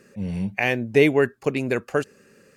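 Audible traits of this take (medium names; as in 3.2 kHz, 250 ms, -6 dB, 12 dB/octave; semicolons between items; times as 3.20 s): noise floor -59 dBFS; spectral tilt -5.0 dB/octave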